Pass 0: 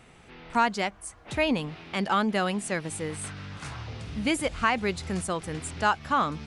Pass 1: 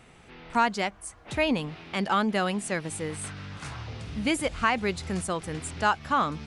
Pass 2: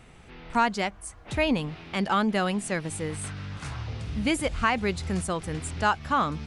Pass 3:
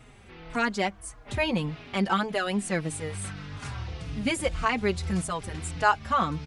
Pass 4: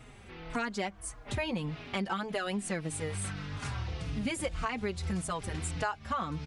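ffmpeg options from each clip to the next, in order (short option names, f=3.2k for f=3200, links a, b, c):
-af anull
-af "lowshelf=f=100:g=9"
-filter_complex "[0:a]asplit=2[a][b];[b]adelay=4.3,afreqshift=-1.7[c];[a][c]amix=inputs=2:normalize=1,volume=2.5dB"
-af "acompressor=threshold=-30dB:ratio=6"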